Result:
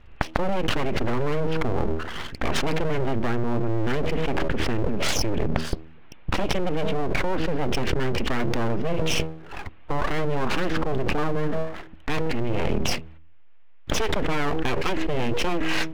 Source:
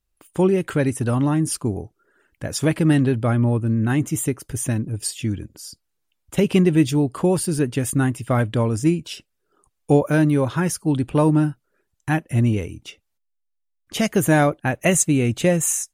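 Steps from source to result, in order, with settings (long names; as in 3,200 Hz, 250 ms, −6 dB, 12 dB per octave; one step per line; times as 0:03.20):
Butterworth low-pass 2,900 Hz 36 dB per octave
hum removal 80.01 Hz, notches 4
full-wave rectification
envelope flattener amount 100%
level −9 dB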